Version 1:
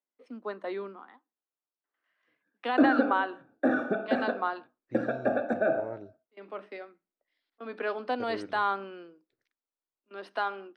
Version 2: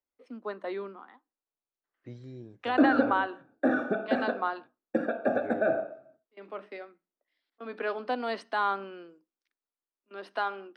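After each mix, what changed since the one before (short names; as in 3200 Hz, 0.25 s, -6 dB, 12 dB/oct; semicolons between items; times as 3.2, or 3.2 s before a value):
second voice: entry -2.85 s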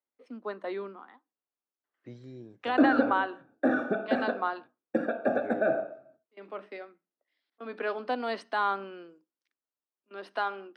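second voice: add HPF 130 Hz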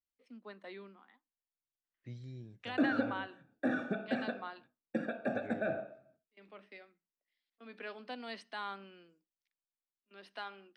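first voice -5.0 dB; second voice: remove HPF 130 Hz; master: add band shelf 630 Hz -9.5 dB 2.8 oct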